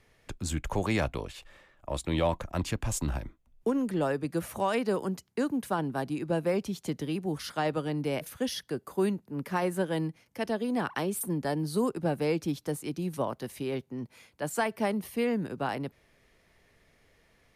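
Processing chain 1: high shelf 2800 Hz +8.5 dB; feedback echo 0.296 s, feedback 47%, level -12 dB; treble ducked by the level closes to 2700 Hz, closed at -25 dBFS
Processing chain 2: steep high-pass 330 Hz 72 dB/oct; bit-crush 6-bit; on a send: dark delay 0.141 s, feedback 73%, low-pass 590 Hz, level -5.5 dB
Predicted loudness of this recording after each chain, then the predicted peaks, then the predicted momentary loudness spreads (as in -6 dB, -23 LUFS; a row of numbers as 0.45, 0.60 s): -31.0, -32.5 LUFS; -14.0, -16.0 dBFS; 9, 11 LU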